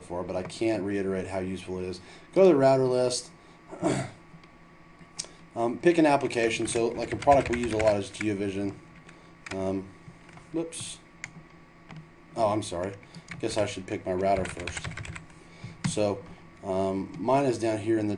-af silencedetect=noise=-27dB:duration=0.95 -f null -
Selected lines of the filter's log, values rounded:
silence_start: 4.05
silence_end: 5.19 | silence_duration: 1.14
silence_start: 11.24
silence_end: 12.38 | silence_duration: 1.14